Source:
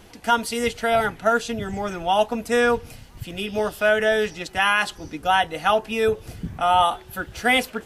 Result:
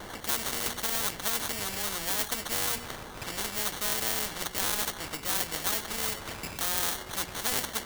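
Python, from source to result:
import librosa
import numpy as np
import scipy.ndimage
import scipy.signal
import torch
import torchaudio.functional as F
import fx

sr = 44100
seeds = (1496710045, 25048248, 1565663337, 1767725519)

y = fx.sample_hold(x, sr, seeds[0], rate_hz=2500.0, jitter_pct=0)
y = fx.hum_notches(y, sr, base_hz=60, count=4)
y = fx.spectral_comp(y, sr, ratio=4.0)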